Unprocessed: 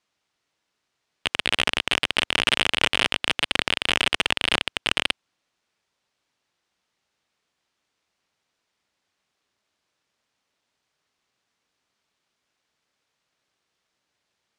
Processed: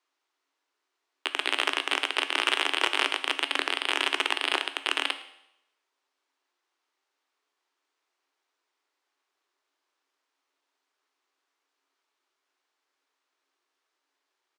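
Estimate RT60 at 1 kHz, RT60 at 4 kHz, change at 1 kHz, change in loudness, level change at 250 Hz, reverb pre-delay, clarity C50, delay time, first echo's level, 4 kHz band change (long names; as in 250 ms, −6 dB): 0.80 s, 0.80 s, −0.5 dB, −4.0 dB, −5.5 dB, 12 ms, 12.5 dB, 109 ms, −21.0 dB, −4.5 dB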